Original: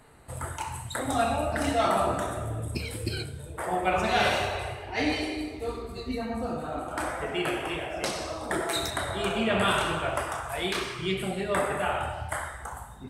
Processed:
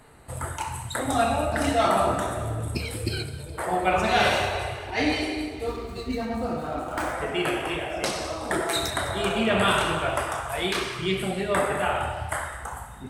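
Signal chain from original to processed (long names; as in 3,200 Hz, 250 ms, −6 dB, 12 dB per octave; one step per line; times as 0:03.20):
feedback echo with a high-pass in the loop 207 ms, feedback 62%, level −16.5 dB
0:05.67–0:07.14: windowed peak hold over 3 samples
level +3 dB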